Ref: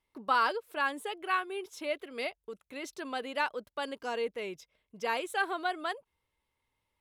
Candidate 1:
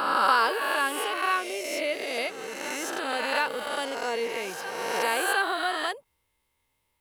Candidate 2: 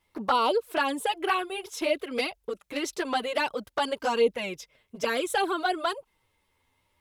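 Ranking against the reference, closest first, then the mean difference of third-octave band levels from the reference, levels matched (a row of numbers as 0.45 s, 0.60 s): 2, 1; 3.5 dB, 10.0 dB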